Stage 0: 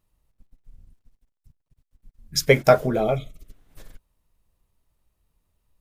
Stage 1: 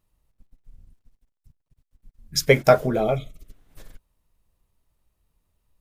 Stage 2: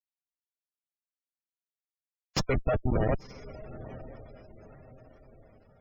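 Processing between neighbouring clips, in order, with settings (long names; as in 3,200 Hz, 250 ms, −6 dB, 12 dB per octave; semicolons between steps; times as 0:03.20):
no processing that can be heard
comparator with hysteresis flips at −20 dBFS; feedback delay with all-pass diffusion 953 ms, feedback 40%, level −15.5 dB; gate on every frequency bin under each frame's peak −20 dB strong; level +3 dB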